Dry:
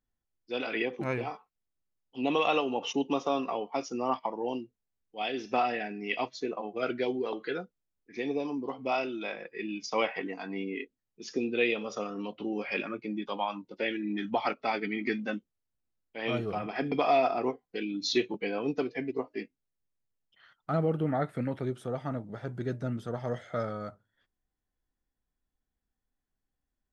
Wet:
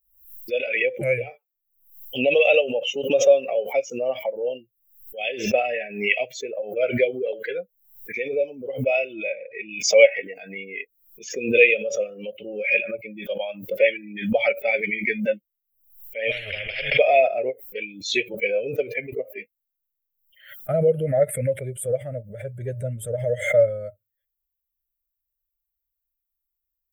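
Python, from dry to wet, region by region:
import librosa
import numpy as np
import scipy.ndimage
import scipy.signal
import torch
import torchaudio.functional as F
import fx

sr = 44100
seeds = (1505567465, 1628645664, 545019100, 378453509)

y = fx.chain(x, sr, fx.lowpass(hz=3200.0, slope=24),
    fx.notch(hz=1700.0, q=6.3), at=(9.13, 9.73))
y = fx.chain(y, sr, fx.air_absorb(metres=320.0),
    fx.spectral_comp(ratio=10.0), at=(16.31, 16.99))
y = fx.bin_expand(y, sr, power=1.5)
y = fx.curve_eq(y, sr, hz=(110.0, 300.0, 570.0, 1000.0, 2300.0, 4900.0, 8700.0), db=(0, -18, 13, -29, 10, -16, 11))
y = fx.pre_swell(y, sr, db_per_s=100.0)
y = y * librosa.db_to_amplitude(9.0)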